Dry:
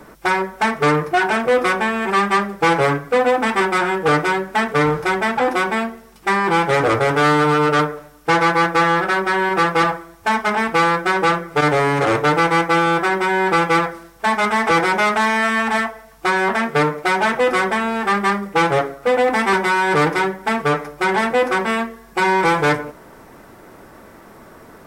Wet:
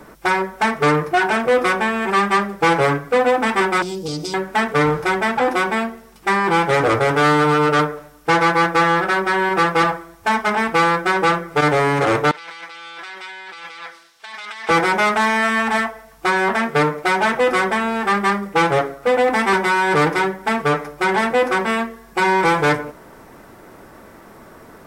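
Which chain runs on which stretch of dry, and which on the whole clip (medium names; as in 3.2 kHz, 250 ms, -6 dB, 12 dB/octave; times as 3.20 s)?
3.82–4.34 s: FFT filter 300 Hz 0 dB, 1.7 kHz -28 dB, 2.6 kHz -10 dB, 4.9 kHz +13 dB, 10 kHz +2 dB + compression 5:1, threshold -22 dBFS
12.31–14.69 s: compressor with a negative ratio -22 dBFS + band-pass filter 3.9 kHz, Q 1.4
whole clip: none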